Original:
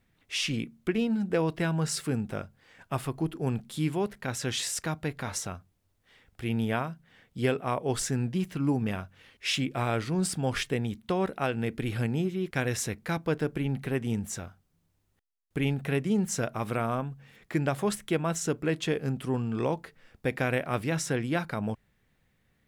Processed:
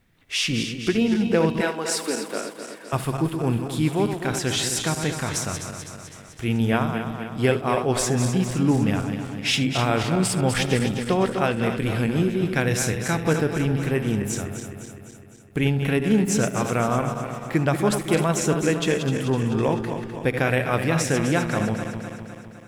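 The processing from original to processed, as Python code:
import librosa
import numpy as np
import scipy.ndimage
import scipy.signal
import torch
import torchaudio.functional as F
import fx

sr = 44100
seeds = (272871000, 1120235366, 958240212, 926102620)

p1 = fx.reverse_delay_fb(x, sr, ms=127, feedback_pct=75, wet_db=-7.5)
p2 = fx.highpass(p1, sr, hz=300.0, slope=24, at=(1.61, 2.93))
p3 = p2 + fx.echo_single(p2, sr, ms=73, db=-17.5, dry=0)
y = p3 * librosa.db_to_amplitude(6.0)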